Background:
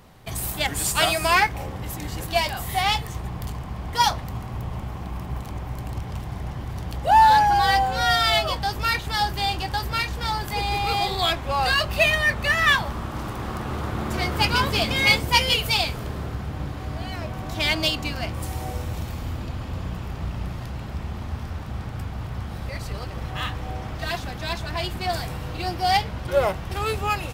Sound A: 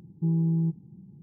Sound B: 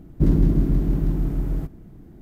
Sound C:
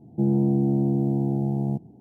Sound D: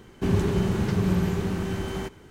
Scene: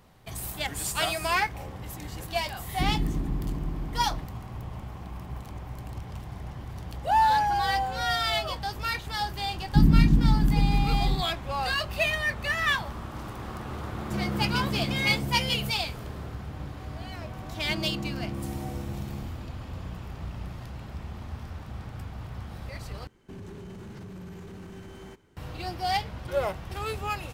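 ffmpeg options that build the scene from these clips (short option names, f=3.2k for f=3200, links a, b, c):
-filter_complex "[2:a]asplit=2[a][b];[3:a]asplit=2[c][d];[0:a]volume=-7dB[e];[b]lowshelf=f=330:t=q:w=1.5:g=12.5[f];[c]equalizer=f=330:w=2.1:g=-6.5[g];[4:a]alimiter=limit=-22.5dB:level=0:latency=1:release=11[h];[e]asplit=2[i][j];[i]atrim=end=23.074[k];[h]atrim=end=2.3,asetpts=PTS-STARTPTS,volume=-13dB[l];[j]atrim=start=25.366[m];[a]atrim=end=2.21,asetpts=PTS-STARTPTS,volume=-10.5dB,afade=t=in:d=0.004:c=hsin,afade=t=out:st=2.206:d=0.004:c=hsin,adelay=2590[n];[f]atrim=end=2.21,asetpts=PTS-STARTPTS,volume=-14dB,afade=t=in:d=0.004:c=hsin,afade=t=out:st=2.206:d=0.004:c=hsin,adelay=9550[o];[g]atrim=end=2,asetpts=PTS-STARTPTS,volume=-8dB,afade=t=in:d=0.004:c=hsin,afade=t=out:st=1.996:d=0.004:c=hsin,adelay=13930[p];[d]atrim=end=2,asetpts=PTS-STARTPTS,volume=-14dB,afade=t=in:d=0.004:c=hsin,afade=t=out:st=1.996:d=0.004:c=hsin,adelay=17500[q];[k][l]acrossfade=d=0.004:c1=hsin:c2=hsin[r];[r][m]acrossfade=d=0.004:c1=hsin:c2=hsin[s];[s][n][o][p][q]amix=inputs=5:normalize=0"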